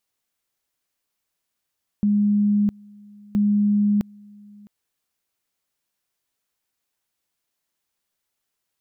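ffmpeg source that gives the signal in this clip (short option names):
-f lavfi -i "aevalsrc='pow(10,(-15.5-27*gte(mod(t,1.32),0.66))/20)*sin(2*PI*206*t)':d=2.64:s=44100"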